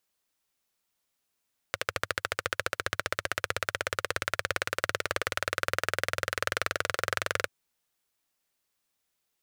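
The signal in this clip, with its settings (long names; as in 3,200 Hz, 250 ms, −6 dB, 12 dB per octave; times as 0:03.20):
pulse-train model of a single-cylinder engine, changing speed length 5.74 s, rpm 1,600, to 2,700, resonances 98/530/1,400 Hz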